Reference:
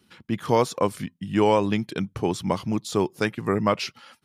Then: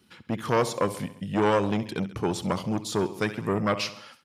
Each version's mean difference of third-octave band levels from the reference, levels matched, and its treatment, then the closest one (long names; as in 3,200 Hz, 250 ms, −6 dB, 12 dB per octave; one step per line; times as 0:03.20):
5.0 dB: repeating echo 67 ms, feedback 57%, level −16 dB
saturating transformer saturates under 980 Hz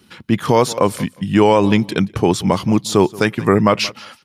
2.5 dB: on a send: repeating echo 177 ms, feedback 18%, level −22 dB
on the sum: boost into a limiter +11.5 dB
level −1 dB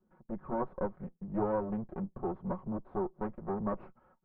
10.0 dB: lower of the sound and its delayed copy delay 5.4 ms
low-pass filter 1,100 Hz 24 dB per octave
level −8 dB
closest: second